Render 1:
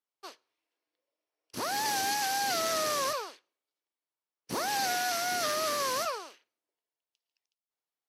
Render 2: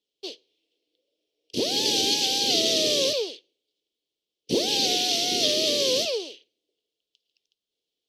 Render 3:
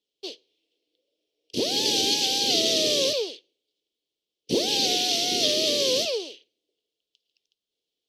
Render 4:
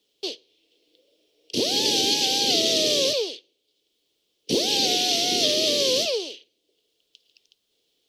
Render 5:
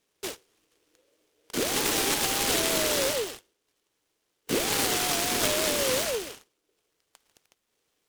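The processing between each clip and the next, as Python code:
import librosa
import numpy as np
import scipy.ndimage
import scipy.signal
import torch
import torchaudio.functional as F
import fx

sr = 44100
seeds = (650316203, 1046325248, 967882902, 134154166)

y1 = fx.curve_eq(x, sr, hz=(120.0, 210.0, 460.0, 1300.0, 3200.0, 11000.0), db=(0, 3, 9, -30, 11, -10))
y1 = y1 * librosa.db_to_amplitude(7.0)
y2 = y1
y3 = fx.band_squash(y2, sr, depth_pct=40)
y3 = y3 * librosa.db_to_amplitude(1.5)
y4 = fx.noise_mod_delay(y3, sr, seeds[0], noise_hz=2500.0, depth_ms=0.076)
y4 = y4 * librosa.db_to_amplitude(-4.0)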